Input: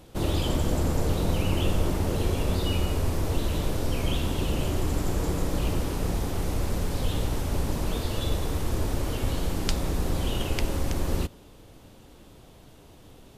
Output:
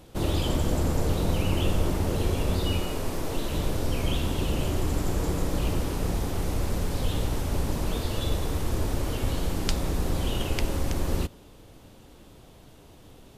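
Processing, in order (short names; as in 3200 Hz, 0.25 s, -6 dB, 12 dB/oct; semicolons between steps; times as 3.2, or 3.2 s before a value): 2.79–3.52 bell 66 Hz -12 dB 1.6 oct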